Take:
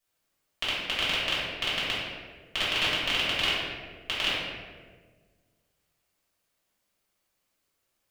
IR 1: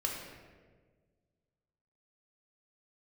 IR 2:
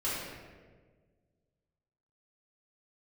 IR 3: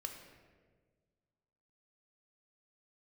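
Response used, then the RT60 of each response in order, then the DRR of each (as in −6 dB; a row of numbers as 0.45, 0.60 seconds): 2; 1.5, 1.5, 1.5 seconds; −1.5, −10.0, 3.5 decibels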